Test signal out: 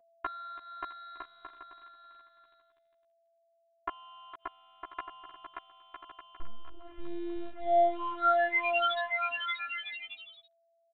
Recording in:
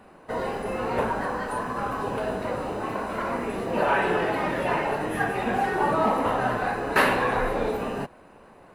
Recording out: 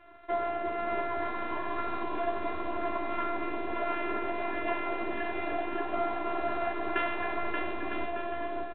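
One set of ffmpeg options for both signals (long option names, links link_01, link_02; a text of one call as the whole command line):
ffmpeg -i in.wav -filter_complex "[0:a]lowshelf=frequency=63:gain=-11,acompressor=threshold=-30dB:ratio=6,afftfilt=real='hypot(re,im)*cos(PI*b)':imag='0':win_size=512:overlap=0.75,adynamicsmooth=sensitivity=2.5:basefreq=1600,aresample=8000,aeval=exprs='sgn(val(0))*max(abs(val(0))-0.00158,0)':channel_layout=same,aresample=44100,aeval=exprs='val(0)+0.000282*sin(2*PI*670*n/s)':channel_layout=same,asplit=2[link_01][link_02];[link_02]adelay=13,volume=-2.5dB[link_03];[link_01][link_03]amix=inputs=2:normalize=0,asplit=2[link_04][link_05];[link_05]aecho=0:1:580|957|1202|1361|1465:0.631|0.398|0.251|0.158|0.1[link_06];[link_04][link_06]amix=inputs=2:normalize=0,volume=6.5dB" out.wav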